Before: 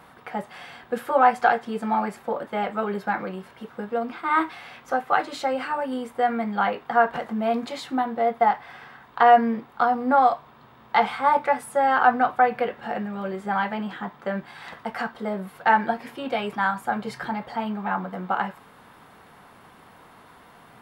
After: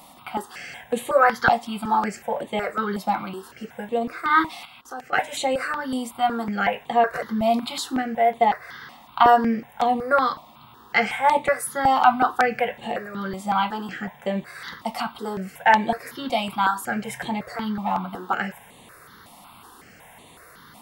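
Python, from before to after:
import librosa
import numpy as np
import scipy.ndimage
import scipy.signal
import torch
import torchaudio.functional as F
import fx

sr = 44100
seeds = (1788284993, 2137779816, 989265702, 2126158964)

y = fx.high_shelf(x, sr, hz=3100.0, db=11.5)
y = fx.level_steps(y, sr, step_db=16, at=(4.65, 5.13))
y = fx.phaser_held(y, sr, hz=5.4, low_hz=420.0, high_hz=5200.0)
y = y * 10.0 ** (3.5 / 20.0)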